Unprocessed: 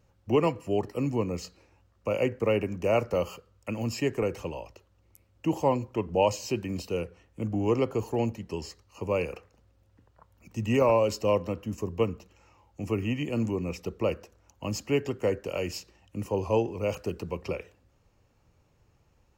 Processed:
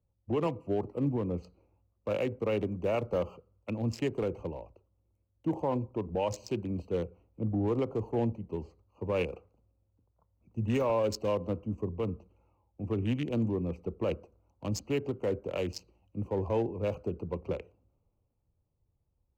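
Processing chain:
adaptive Wiener filter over 25 samples
brickwall limiter −21.5 dBFS, peak gain reduction 9 dB
multiband upward and downward expander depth 40%

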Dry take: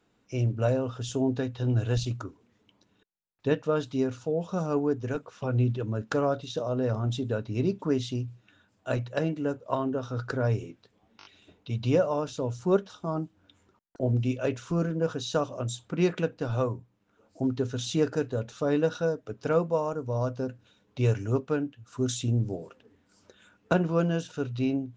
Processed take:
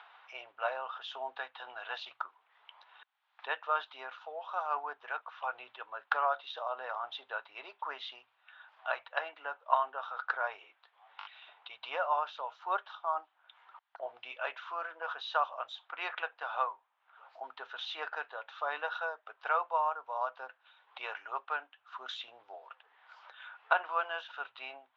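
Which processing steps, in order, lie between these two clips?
upward compression, threshold −41 dBFS
elliptic band-pass filter 760–3,500 Hz, stop band 60 dB
parametric band 1,100 Hz +6.5 dB 1.2 octaves

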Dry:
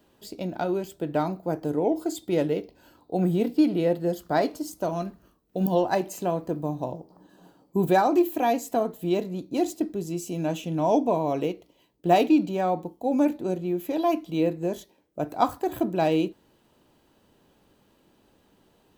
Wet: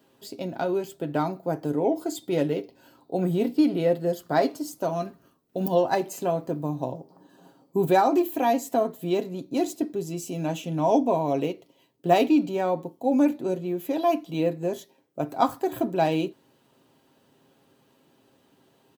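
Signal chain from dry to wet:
high-pass filter 110 Hz
comb filter 7.5 ms, depth 43%

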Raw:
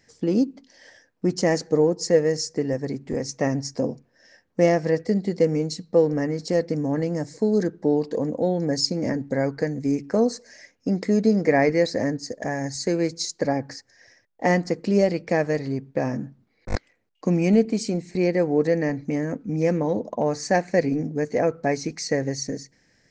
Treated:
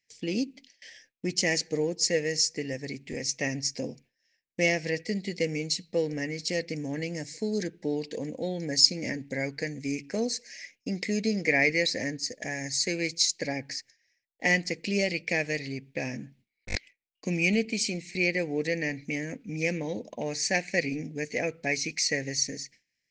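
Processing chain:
noise gate with hold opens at −41 dBFS
high shelf with overshoot 1,700 Hz +11.5 dB, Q 3
level −8.5 dB

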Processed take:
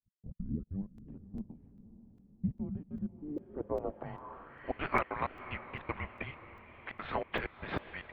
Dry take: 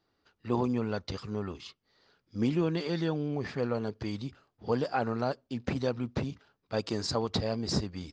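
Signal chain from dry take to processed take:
turntable start at the beginning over 0.93 s
high-pass filter 130 Hz 12 dB per octave
gate on every frequency bin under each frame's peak −10 dB weak
low-shelf EQ 240 Hz −9 dB
single-sideband voice off tune −290 Hz 220–3,500 Hz
gate pattern "x..x.xxx.xx..x" 191 BPM −60 dB
feedback delay with all-pass diffusion 554 ms, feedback 56%, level −14.5 dB
low-pass filter sweep 200 Hz → 2,100 Hz, 0:03.01–0:04.79
regular buffer underruns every 0.40 s, samples 128, zero, from 0:00.98
level +6 dB

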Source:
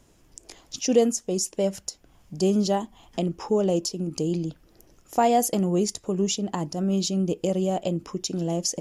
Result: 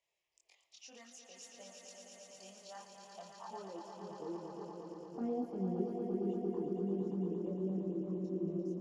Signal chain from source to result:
band-pass filter sweep 2,100 Hz → 300 Hz, 0:02.58–0:04.96
phaser swept by the level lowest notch 250 Hz, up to 1,600 Hz, full sweep at −24 dBFS
echo that builds up and dies away 115 ms, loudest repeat 5, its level −7 dB
multi-voice chorus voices 6, 0.45 Hz, delay 24 ms, depth 3.5 ms
level −5 dB

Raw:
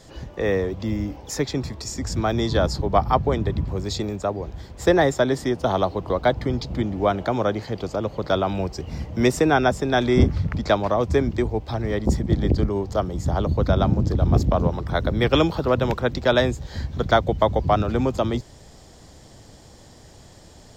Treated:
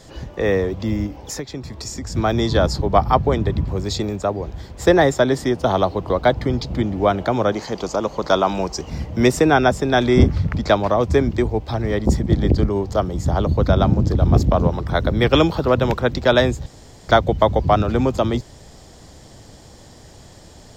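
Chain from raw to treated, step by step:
0:01.06–0:02.15: downward compressor 5 to 1, threshold −30 dBFS, peak gain reduction 12 dB
0:07.52–0:08.90: graphic EQ with 15 bands 100 Hz −12 dB, 1,000 Hz +6 dB, 6,300 Hz +10 dB
0:16.66–0:17.09: fill with room tone
level +3.5 dB

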